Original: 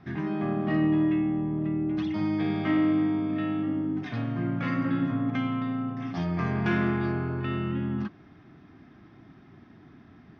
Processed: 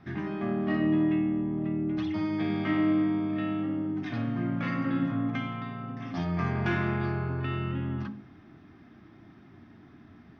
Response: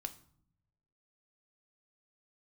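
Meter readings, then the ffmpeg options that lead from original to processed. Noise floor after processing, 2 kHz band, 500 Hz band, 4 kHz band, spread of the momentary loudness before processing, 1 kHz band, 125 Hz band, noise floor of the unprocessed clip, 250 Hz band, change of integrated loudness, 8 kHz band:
-54 dBFS, -0.5 dB, -1.5 dB, -0.5 dB, 7 LU, -1.5 dB, -1.0 dB, -54 dBFS, -2.0 dB, -1.5 dB, n/a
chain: -filter_complex "[0:a]bandreject=f=52.24:t=h:w=4,bandreject=f=104.48:t=h:w=4,bandreject=f=156.72:t=h:w=4,bandreject=f=208.96:t=h:w=4,bandreject=f=261.2:t=h:w=4,bandreject=f=313.44:t=h:w=4,bandreject=f=365.68:t=h:w=4,bandreject=f=417.92:t=h:w=4,bandreject=f=470.16:t=h:w=4,bandreject=f=522.4:t=h:w=4,bandreject=f=574.64:t=h:w=4,bandreject=f=626.88:t=h:w=4,bandreject=f=679.12:t=h:w=4,bandreject=f=731.36:t=h:w=4,bandreject=f=783.6:t=h:w=4,bandreject=f=835.84:t=h:w=4,bandreject=f=888.08:t=h:w=4,bandreject=f=940.32:t=h:w=4,bandreject=f=992.56:t=h:w=4,bandreject=f=1.0448k:t=h:w=4,asplit=2[a][b];[1:a]atrim=start_sample=2205[c];[b][c]afir=irnorm=-1:irlink=0,volume=4.5dB[d];[a][d]amix=inputs=2:normalize=0,volume=-7.5dB"

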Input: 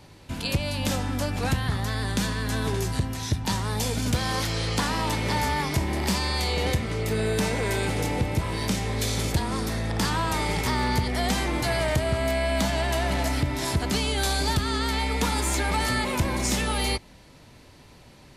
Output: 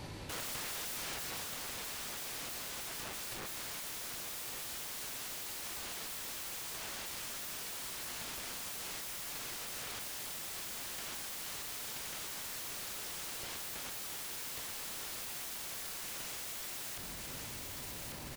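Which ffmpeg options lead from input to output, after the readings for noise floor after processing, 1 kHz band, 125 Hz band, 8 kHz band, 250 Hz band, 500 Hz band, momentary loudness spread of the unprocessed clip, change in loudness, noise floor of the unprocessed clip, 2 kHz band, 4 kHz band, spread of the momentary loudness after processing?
-44 dBFS, -20.0 dB, -29.0 dB, -7.5 dB, -26.0 dB, -23.0 dB, 3 LU, -14.0 dB, -50 dBFS, -15.5 dB, -12.5 dB, 1 LU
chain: -af "aeval=exprs='(mod(47.3*val(0)+1,2)-1)/47.3':c=same,aecho=1:1:1145|2290|3435|4580|5725:0.376|0.169|0.0761|0.0342|0.0154,alimiter=level_in=16.5dB:limit=-24dB:level=0:latency=1:release=20,volume=-16.5dB,volume=4.5dB"

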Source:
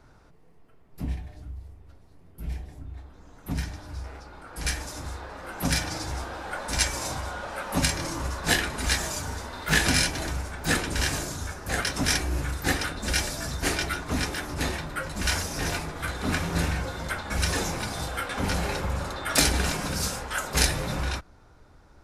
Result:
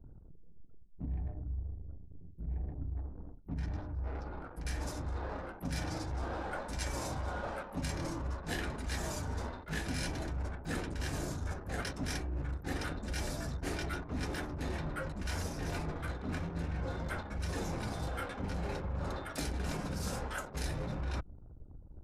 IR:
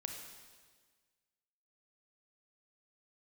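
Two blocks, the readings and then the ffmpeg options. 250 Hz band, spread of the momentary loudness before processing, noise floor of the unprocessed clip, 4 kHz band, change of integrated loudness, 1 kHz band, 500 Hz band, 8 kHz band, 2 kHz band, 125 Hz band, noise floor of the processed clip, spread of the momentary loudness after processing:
-7.5 dB, 14 LU, -54 dBFS, -16.5 dB, -11.0 dB, -9.5 dB, -7.5 dB, -17.0 dB, -14.0 dB, -6.5 dB, -51 dBFS, 5 LU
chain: -af "tiltshelf=f=970:g=5,areverse,acompressor=threshold=-34dB:ratio=8,areverse,anlmdn=0.01"

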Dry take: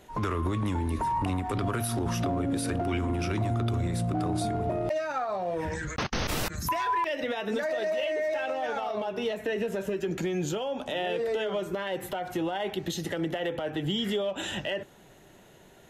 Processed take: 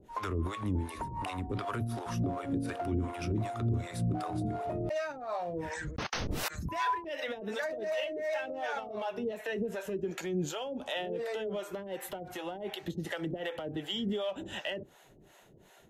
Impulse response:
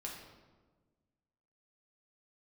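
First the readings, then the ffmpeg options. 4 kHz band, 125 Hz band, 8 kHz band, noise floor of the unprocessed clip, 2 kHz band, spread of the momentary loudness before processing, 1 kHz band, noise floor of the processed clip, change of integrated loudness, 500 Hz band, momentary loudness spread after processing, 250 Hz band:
-5.0 dB, -4.5 dB, -7.0 dB, -54 dBFS, -4.5 dB, 4 LU, -6.0 dB, -59 dBFS, -5.5 dB, -5.5 dB, 6 LU, -5.0 dB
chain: -filter_complex "[0:a]acrossover=split=510[a][b];[a]aeval=exprs='val(0)*(1-1/2+1/2*cos(2*PI*2.7*n/s))':c=same[c];[b]aeval=exprs='val(0)*(1-1/2-1/2*cos(2*PI*2.7*n/s))':c=same[d];[c][d]amix=inputs=2:normalize=0"

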